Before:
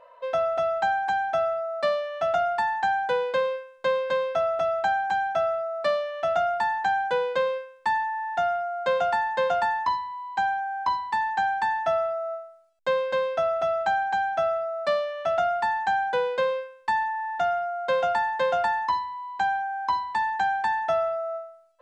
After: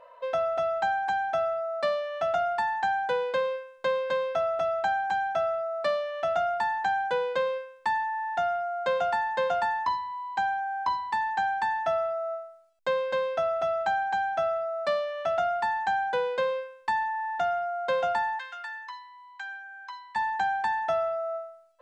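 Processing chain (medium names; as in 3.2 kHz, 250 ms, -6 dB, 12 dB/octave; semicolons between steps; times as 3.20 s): in parallel at -3 dB: compression, threshold -31 dBFS, peak gain reduction 11 dB; 18.39–20.16 s: on the sum: ladder high-pass 1.2 kHz, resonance 30%; trim -4.5 dB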